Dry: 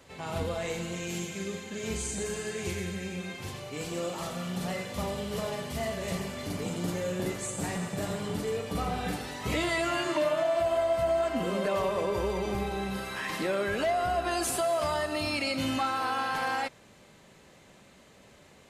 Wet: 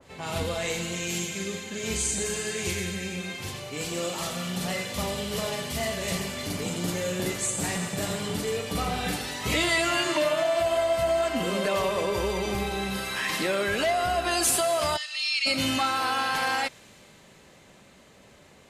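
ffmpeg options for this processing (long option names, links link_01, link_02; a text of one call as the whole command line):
ffmpeg -i in.wav -filter_complex "[0:a]asplit=3[link_01][link_02][link_03];[link_01]afade=type=out:start_time=14.96:duration=0.02[link_04];[link_02]asuperpass=centerf=4000:order=4:qfactor=0.91,afade=type=in:start_time=14.96:duration=0.02,afade=type=out:start_time=15.45:duration=0.02[link_05];[link_03]afade=type=in:start_time=15.45:duration=0.02[link_06];[link_04][link_05][link_06]amix=inputs=3:normalize=0,adynamicequalizer=threshold=0.00501:dfrequency=1800:dqfactor=0.7:tfrequency=1800:tqfactor=0.7:attack=5:release=100:ratio=0.375:range=3.5:mode=boostabove:tftype=highshelf,volume=2dB" out.wav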